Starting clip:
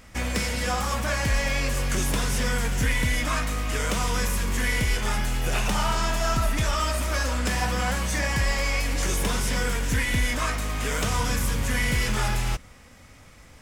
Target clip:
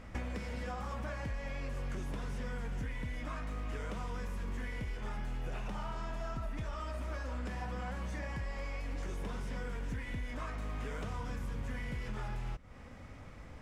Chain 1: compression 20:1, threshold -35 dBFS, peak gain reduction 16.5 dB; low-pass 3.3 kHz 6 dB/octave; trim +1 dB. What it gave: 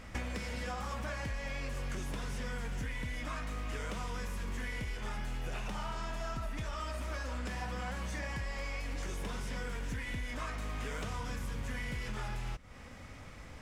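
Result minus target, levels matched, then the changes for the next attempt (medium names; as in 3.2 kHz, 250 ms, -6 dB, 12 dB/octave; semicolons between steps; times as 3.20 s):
4 kHz band +5.0 dB
change: low-pass 1.2 kHz 6 dB/octave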